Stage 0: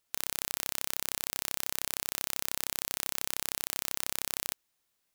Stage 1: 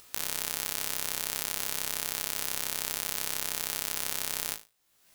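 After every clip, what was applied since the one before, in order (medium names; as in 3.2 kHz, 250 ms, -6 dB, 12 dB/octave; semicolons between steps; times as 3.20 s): upward compressor, threshold -39 dBFS; flutter echo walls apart 3.2 m, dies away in 0.27 s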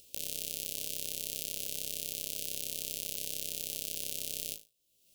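Chebyshev band-stop 580–2800 Hz, order 3; in parallel at -11.5 dB: saturation -18.5 dBFS, distortion -7 dB; on the sum: trim -5.5 dB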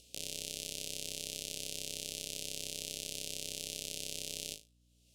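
low-pass 8.4 kHz 12 dB/octave; hum 60 Hz, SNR 27 dB; trim +1 dB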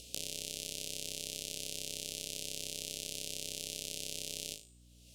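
de-hum 372.5 Hz, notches 37; compression 4:1, threshold -45 dBFS, peak gain reduction 9 dB; trim +9 dB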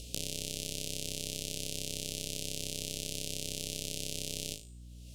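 bass shelf 260 Hz +11 dB; trim +2 dB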